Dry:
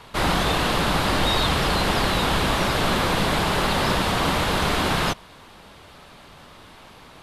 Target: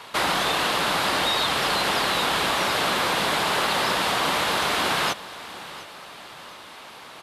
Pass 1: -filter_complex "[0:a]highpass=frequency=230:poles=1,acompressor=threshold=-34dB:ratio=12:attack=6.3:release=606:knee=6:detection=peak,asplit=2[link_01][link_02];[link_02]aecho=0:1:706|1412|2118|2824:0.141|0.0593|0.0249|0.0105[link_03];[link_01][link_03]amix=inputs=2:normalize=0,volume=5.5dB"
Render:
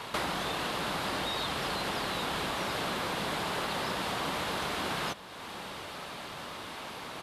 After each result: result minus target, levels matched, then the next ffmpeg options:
downward compressor: peak gain reduction +11.5 dB; 250 Hz band +6.0 dB
-filter_complex "[0:a]highpass=frequency=230:poles=1,acompressor=threshold=-22.5dB:ratio=12:attack=6.3:release=606:knee=6:detection=peak,asplit=2[link_01][link_02];[link_02]aecho=0:1:706|1412|2118|2824:0.141|0.0593|0.0249|0.0105[link_03];[link_01][link_03]amix=inputs=2:normalize=0,volume=5.5dB"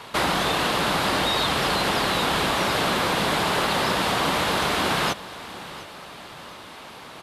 250 Hz band +4.5 dB
-filter_complex "[0:a]highpass=frequency=610:poles=1,acompressor=threshold=-22.5dB:ratio=12:attack=6.3:release=606:knee=6:detection=peak,asplit=2[link_01][link_02];[link_02]aecho=0:1:706|1412|2118|2824:0.141|0.0593|0.0249|0.0105[link_03];[link_01][link_03]amix=inputs=2:normalize=0,volume=5.5dB"

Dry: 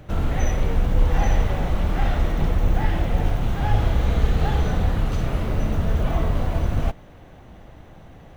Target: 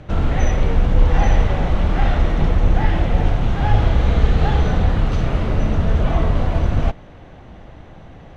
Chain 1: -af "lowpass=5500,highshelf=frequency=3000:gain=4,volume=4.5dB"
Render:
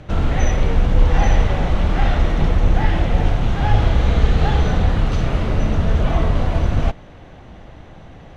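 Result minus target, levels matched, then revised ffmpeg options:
8,000 Hz band +3.0 dB
-af "lowpass=5500,volume=4.5dB"

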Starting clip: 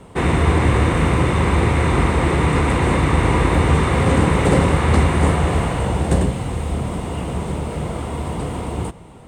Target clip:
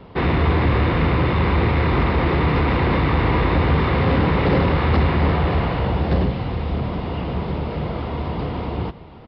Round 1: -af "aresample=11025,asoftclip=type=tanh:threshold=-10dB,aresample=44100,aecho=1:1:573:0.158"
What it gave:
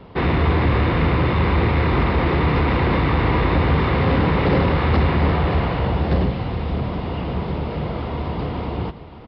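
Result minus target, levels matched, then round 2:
echo-to-direct +6.5 dB
-af "aresample=11025,asoftclip=type=tanh:threshold=-10dB,aresample=44100,aecho=1:1:573:0.075"

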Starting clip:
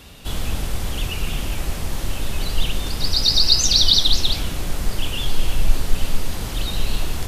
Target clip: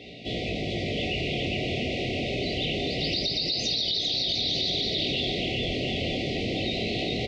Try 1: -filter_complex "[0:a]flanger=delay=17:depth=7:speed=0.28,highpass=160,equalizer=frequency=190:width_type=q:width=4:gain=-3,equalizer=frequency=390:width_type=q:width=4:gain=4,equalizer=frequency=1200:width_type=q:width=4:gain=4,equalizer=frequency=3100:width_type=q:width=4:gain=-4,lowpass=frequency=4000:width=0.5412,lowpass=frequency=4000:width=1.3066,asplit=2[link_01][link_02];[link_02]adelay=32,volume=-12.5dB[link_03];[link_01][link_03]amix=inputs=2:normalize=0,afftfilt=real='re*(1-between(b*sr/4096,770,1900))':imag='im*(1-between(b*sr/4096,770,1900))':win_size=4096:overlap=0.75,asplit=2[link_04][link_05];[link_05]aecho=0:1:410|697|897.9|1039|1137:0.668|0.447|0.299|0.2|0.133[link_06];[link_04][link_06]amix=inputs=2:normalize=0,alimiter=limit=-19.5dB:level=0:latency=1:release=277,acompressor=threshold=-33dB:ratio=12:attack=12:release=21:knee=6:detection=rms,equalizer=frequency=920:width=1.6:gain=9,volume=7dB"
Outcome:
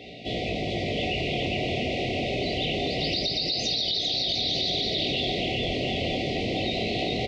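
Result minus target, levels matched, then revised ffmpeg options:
1,000 Hz band +5.0 dB
-filter_complex "[0:a]flanger=delay=17:depth=7:speed=0.28,highpass=160,equalizer=frequency=190:width_type=q:width=4:gain=-3,equalizer=frequency=390:width_type=q:width=4:gain=4,equalizer=frequency=1200:width_type=q:width=4:gain=4,equalizer=frequency=3100:width_type=q:width=4:gain=-4,lowpass=frequency=4000:width=0.5412,lowpass=frequency=4000:width=1.3066,asplit=2[link_01][link_02];[link_02]adelay=32,volume=-12.5dB[link_03];[link_01][link_03]amix=inputs=2:normalize=0,afftfilt=real='re*(1-between(b*sr/4096,770,1900))':imag='im*(1-between(b*sr/4096,770,1900))':win_size=4096:overlap=0.75,asplit=2[link_04][link_05];[link_05]aecho=0:1:410|697|897.9|1039|1137:0.668|0.447|0.299|0.2|0.133[link_06];[link_04][link_06]amix=inputs=2:normalize=0,alimiter=limit=-19.5dB:level=0:latency=1:release=277,acompressor=threshold=-33dB:ratio=12:attack=12:release=21:knee=6:detection=rms,volume=7dB"

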